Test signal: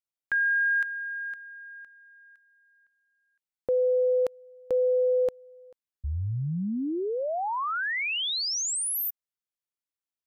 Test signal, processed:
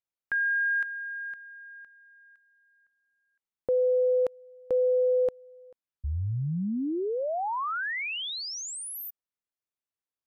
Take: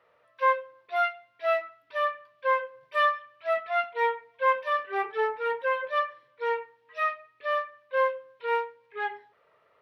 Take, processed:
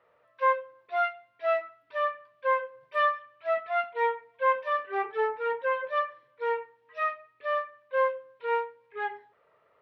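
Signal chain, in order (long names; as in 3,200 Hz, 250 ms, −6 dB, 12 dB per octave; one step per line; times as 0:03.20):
high-shelf EQ 3,000 Hz −9 dB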